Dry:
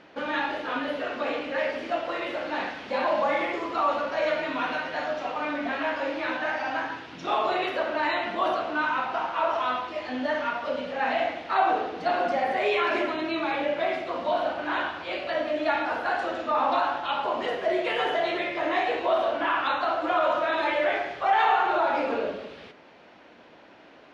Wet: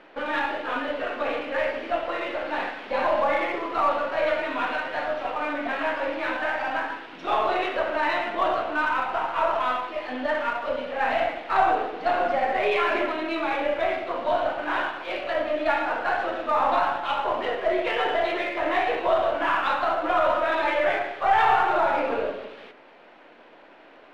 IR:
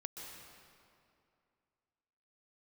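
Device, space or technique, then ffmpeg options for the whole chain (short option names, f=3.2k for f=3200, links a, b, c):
crystal radio: -af "highpass=290,lowpass=3.3k,aeval=exprs='if(lt(val(0),0),0.708*val(0),val(0))':c=same,volume=3.5dB"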